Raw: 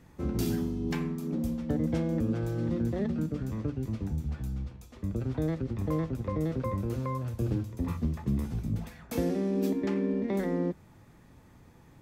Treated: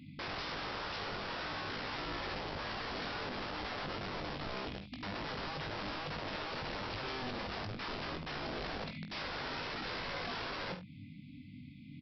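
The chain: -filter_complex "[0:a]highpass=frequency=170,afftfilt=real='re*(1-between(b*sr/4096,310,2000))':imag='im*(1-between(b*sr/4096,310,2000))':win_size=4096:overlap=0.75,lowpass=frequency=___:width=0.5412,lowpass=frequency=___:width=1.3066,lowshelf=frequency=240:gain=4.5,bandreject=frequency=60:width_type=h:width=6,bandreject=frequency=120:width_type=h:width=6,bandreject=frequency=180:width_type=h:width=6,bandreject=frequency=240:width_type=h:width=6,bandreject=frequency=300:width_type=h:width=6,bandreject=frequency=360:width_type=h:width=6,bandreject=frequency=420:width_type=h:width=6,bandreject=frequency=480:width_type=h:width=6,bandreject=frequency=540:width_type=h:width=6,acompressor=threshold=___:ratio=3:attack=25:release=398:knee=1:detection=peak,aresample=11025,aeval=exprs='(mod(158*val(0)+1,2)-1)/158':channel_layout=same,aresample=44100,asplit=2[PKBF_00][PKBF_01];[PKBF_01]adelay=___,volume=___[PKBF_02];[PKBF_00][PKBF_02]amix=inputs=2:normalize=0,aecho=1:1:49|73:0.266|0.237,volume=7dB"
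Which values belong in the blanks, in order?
4.1k, 4.1k, -41dB, 20, -6dB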